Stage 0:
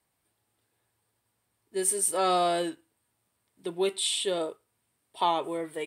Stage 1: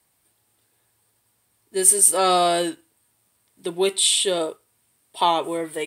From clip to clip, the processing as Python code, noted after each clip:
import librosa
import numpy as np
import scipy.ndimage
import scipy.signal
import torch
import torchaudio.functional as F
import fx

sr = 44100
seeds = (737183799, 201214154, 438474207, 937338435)

y = fx.high_shelf(x, sr, hz=4200.0, db=7.0)
y = y * librosa.db_to_amplitude(6.0)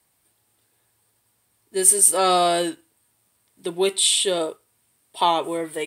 y = x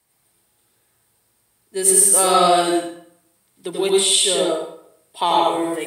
y = fx.rev_plate(x, sr, seeds[0], rt60_s=0.67, hf_ratio=0.75, predelay_ms=75, drr_db=-2.5)
y = y * librosa.db_to_amplitude(-1.0)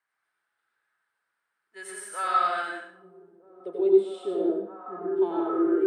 y = fx.filter_sweep_bandpass(x, sr, from_hz=1500.0, to_hz=330.0, start_s=2.9, end_s=4.03, q=4.2)
y = fx.echo_stepped(y, sr, ms=630, hz=170.0, octaves=0.7, feedback_pct=70, wet_db=-0.5)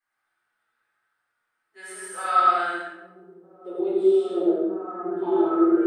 y = fx.room_shoebox(x, sr, seeds[1], volume_m3=200.0, walls='mixed', distance_m=3.7)
y = y * librosa.db_to_amplitude(-8.5)